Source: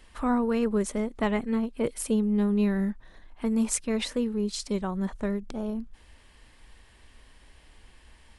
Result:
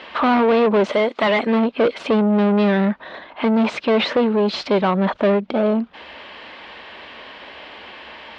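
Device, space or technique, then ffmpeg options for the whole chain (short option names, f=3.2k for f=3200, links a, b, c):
overdrive pedal into a guitar cabinet: -filter_complex "[0:a]asettb=1/sr,asplit=3[a][b][c];[a]atrim=end=0.924[d];[b]atrim=start=0.92:end=1.47,asetpts=PTS-STARTPTS,afade=t=in:d=0.004:c=qsin,afade=t=out:st=0.546:d=0.004:c=qsin,aemphasis=mode=production:type=riaa[e];[c]atrim=start=1.466[f];[d][e]acrossfade=d=0.004:c1=hsin:c2=qsin[g];[g][f]acrossfade=d=0.004:c1=qsin:c2=hsin,asplit=2[h][i];[i]highpass=f=720:p=1,volume=32dB,asoftclip=type=tanh:threshold=-8.5dB[j];[h][j]amix=inputs=2:normalize=0,lowpass=f=3.2k:p=1,volume=-6dB,highpass=100,equalizer=f=120:t=q:w=4:g=-10,equalizer=f=590:t=q:w=4:g=5,equalizer=f=1.8k:t=q:w=4:g=-4,lowpass=f=3.9k:w=0.5412,lowpass=f=3.9k:w=1.3066"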